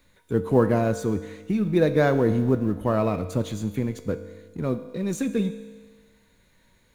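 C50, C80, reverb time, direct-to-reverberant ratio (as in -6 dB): 12.0 dB, 13.5 dB, 1.4 s, 10.0 dB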